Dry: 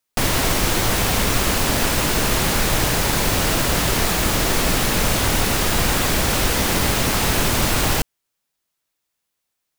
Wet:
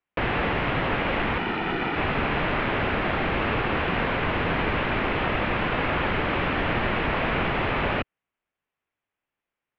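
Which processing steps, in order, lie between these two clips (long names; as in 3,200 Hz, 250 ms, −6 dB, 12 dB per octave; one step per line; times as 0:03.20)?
0:01.38–0:01.96: lower of the sound and its delayed copy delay 1.9 ms
single-sideband voice off tune −210 Hz 220–3,000 Hz
level −1.5 dB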